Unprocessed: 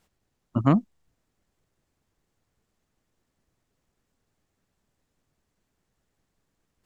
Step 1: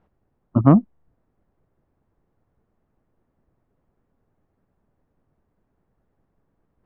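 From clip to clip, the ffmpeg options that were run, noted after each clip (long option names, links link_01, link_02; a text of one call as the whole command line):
ffmpeg -i in.wav -af "lowpass=1100,volume=7dB" out.wav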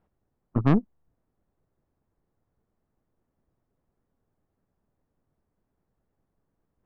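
ffmpeg -i in.wav -af "aeval=exprs='(tanh(3.98*val(0)+0.75)-tanh(0.75))/3.98':channel_layout=same,volume=-2.5dB" out.wav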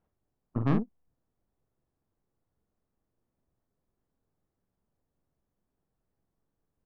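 ffmpeg -i in.wav -filter_complex "[0:a]asplit=2[link_01][link_02];[link_02]adelay=44,volume=-5dB[link_03];[link_01][link_03]amix=inputs=2:normalize=0,volume=-6.5dB" out.wav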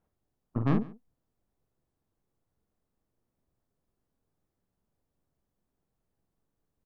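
ffmpeg -i in.wav -af "aecho=1:1:142:0.0891" out.wav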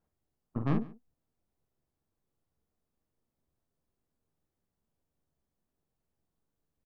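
ffmpeg -i in.wav -filter_complex "[0:a]asplit=2[link_01][link_02];[link_02]adelay=13,volume=-12dB[link_03];[link_01][link_03]amix=inputs=2:normalize=0,volume=-3.5dB" out.wav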